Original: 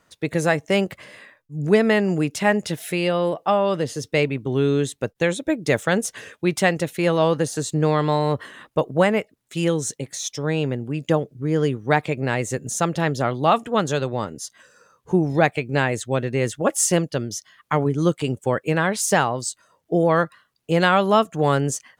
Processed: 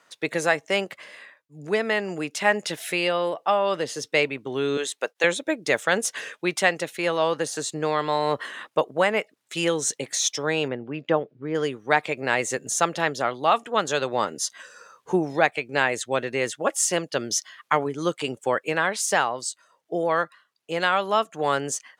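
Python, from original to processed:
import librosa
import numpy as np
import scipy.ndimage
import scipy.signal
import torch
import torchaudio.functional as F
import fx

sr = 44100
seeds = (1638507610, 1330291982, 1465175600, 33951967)

y = fx.highpass(x, sr, hz=460.0, slope=12, at=(4.77, 5.24))
y = fx.air_absorb(y, sr, metres=320.0, at=(10.68, 11.55))
y = fx.rider(y, sr, range_db=10, speed_s=0.5)
y = fx.weighting(y, sr, curve='A')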